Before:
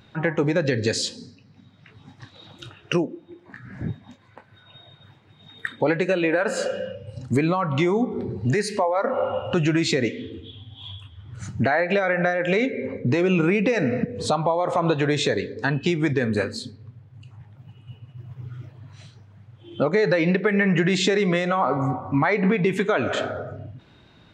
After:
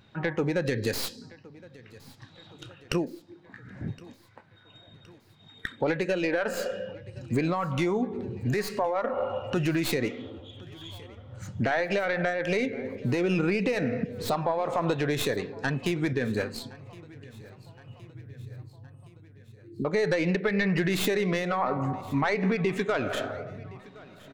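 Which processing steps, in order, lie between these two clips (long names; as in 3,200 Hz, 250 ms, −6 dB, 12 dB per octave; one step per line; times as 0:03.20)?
stylus tracing distortion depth 0.13 ms
0:18.12–0:19.85: linear-phase brick-wall band-stop 440–8,000 Hz
on a send: repeating echo 1,067 ms, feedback 58%, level −22 dB
on the sum: level −5.5 dB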